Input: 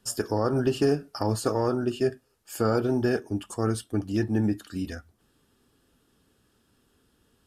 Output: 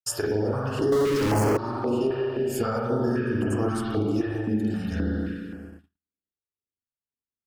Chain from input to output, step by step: spring tank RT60 2 s, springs 38/50 ms, chirp 45 ms, DRR -8 dB; gate -43 dBFS, range -49 dB; 0.92–1.57 s: power-law waveshaper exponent 0.35; compression 10:1, threshold -23 dBFS, peak gain reduction 17 dB; step-sequenced notch 3.8 Hz 220–3700 Hz; trim +2.5 dB

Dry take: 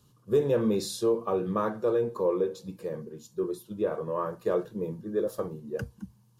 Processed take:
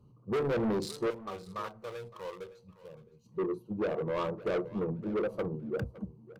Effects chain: local Wiener filter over 25 samples; 1.10–3.26 s: amplifier tone stack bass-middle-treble 10-0-10; saturation -30.5 dBFS, distortion -7 dB; feedback delay 563 ms, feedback 18%, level -18 dB; trim +3.5 dB

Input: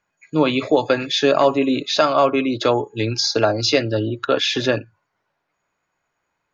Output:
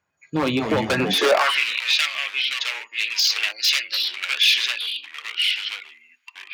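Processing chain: 0.84–2.06 s: dynamic bell 2 kHz, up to +8 dB, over -33 dBFS, Q 0.76; level rider gain up to 6.5 dB; wavefolder -12 dBFS; ever faster or slower copies 144 ms, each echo -3 st, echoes 2, each echo -6 dB; high-pass sweep 77 Hz -> 2.5 kHz, 0.92–1.62 s; trim -2.5 dB

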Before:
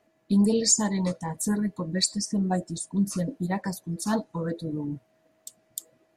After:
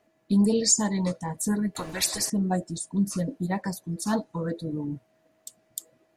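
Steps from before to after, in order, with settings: 1.75–2.30 s: spectrum-flattening compressor 4:1

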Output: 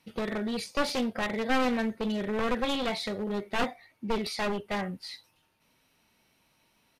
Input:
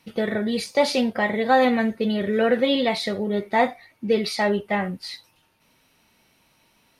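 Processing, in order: one-sided wavefolder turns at -21.5 dBFS; resampled via 32 kHz; trim -6.5 dB

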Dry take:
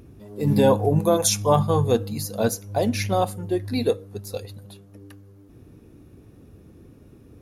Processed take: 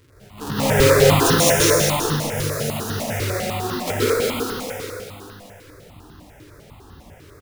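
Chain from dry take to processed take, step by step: square wave that keeps the level; bass shelf 360 Hz -5 dB; 1.51–3.70 s: compression, threshold -24 dBFS, peak gain reduction 11.5 dB; multi-tap echo 216/349 ms -3/-8.5 dB; plate-style reverb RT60 2.4 s, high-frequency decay 0.9×, pre-delay 110 ms, DRR -8.5 dB; stepped phaser 10 Hz 200–2300 Hz; trim -5.5 dB

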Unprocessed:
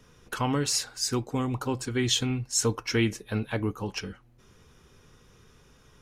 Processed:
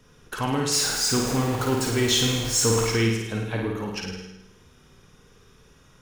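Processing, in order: 0.72–2.87 s: jump at every zero crossing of -27 dBFS; flutter echo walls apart 9.1 m, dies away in 0.86 s; gated-style reverb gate 280 ms flat, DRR 10.5 dB

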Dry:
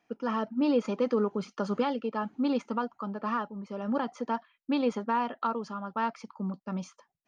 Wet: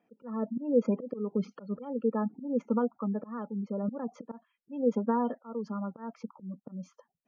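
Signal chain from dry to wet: spectral gate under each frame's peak -20 dB strong; slow attack 297 ms; small resonant body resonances 220/470 Hz, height 13 dB, ringing for 20 ms; trim -7 dB

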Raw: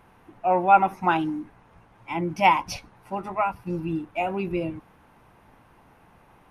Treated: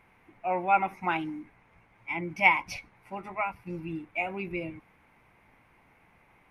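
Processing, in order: peaking EQ 2.2 kHz +14.5 dB 0.4 oct; trim -8 dB

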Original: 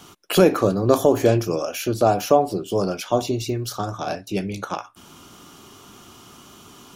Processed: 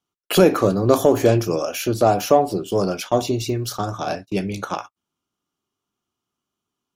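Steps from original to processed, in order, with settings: gate -34 dBFS, range -39 dB; in parallel at -11.5 dB: saturation -15 dBFS, distortion -9 dB

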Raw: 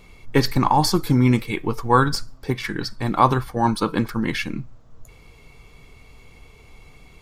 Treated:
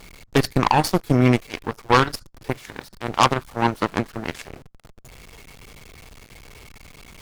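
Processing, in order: jump at every zero crossing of -21 dBFS; Chebyshev shaper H 5 -7 dB, 7 -6 dB, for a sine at -1 dBFS; trim -4 dB

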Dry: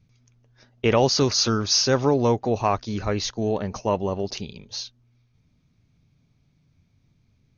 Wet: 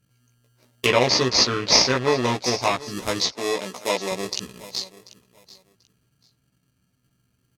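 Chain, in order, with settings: local Wiener filter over 25 samples; treble shelf 3 kHz +8 dB; doubling 16 ms -2.5 dB; in parallel at -5 dB: sample-rate reducer 1.5 kHz, jitter 0%; on the sum: tilt EQ +3.5 dB/octave; band-stop 790 Hz, Q 18; on a send: feedback delay 738 ms, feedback 21%, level -19.5 dB; on the sum: low-pass that closes with the level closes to 2.9 kHz, closed at -13 dBFS; 3.32–4.12 s: high-pass 240 Hz 12 dB/octave; trim -1 dB

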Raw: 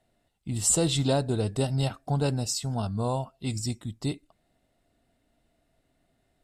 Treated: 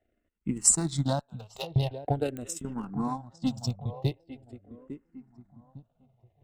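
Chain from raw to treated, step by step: local Wiener filter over 9 samples; 1.19–1.76 s: high-pass 1 kHz 12 dB/octave; 2.97–3.67 s: comb 3.8 ms, depth 75%; transient shaper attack +11 dB, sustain -10 dB; filtered feedback delay 854 ms, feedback 39%, low-pass 1.5 kHz, level -13 dB; clicks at 2.37 s, -16 dBFS; barber-pole phaser -0.44 Hz; trim -2.5 dB

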